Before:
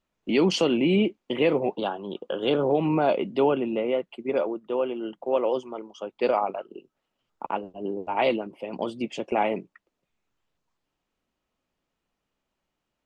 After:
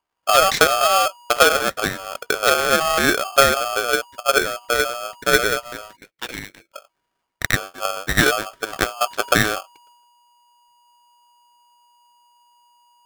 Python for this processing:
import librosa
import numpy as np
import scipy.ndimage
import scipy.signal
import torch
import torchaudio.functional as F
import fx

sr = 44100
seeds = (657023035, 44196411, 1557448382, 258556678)

p1 = fx.wiener(x, sr, points=15)
p2 = fx.backlash(p1, sr, play_db=-23.5)
p3 = p1 + (p2 * 10.0 ** (-6.5 / 20.0))
p4 = fx.transient(p3, sr, attack_db=9, sustain_db=5)
p5 = fx.cheby1_bandpass(p4, sr, low_hz=1300.0, high_hz=2600.0, order=2, at=(5.95, 6.73), fade=0.02)
y = p5 * np.sign(np.sin(2.0 * np.pi * 960.0 * np.arange(len(p5)) / sr))